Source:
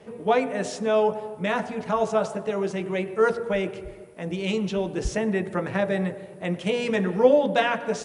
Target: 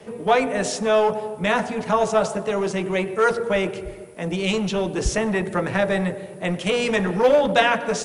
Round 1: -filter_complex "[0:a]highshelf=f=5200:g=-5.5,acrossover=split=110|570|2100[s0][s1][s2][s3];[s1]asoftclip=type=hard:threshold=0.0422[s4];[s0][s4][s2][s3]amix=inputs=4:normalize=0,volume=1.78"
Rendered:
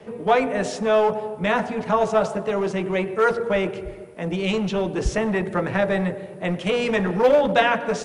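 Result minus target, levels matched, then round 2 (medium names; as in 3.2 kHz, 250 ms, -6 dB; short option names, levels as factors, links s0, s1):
8 kHz band -7.0 dB
-filter_complex "[0:a]highshelf=f=5200:g=6,acrossover=split=110|570|2100[s0][s1][s2][s3];[s1]asoftclip=type=hard:threshold=0.0422[s4];[s0][s4][s2][s3]amix=inputs=4:normalize=0,volume=1.78"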